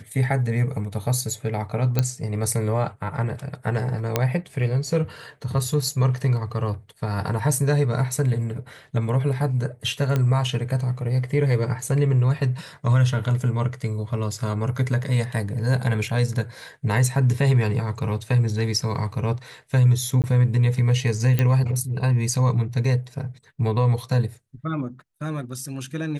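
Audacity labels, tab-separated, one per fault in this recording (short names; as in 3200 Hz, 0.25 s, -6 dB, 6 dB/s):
1.990000	1.990000	pop -7 dBFS
4.160000	4.160000	pop -5 dBFS
10.160000	10.160000	pop -11 dBFS
20.220000	20.240000	gap 18 ms
21.390000	21.390000	pop -9 dBFS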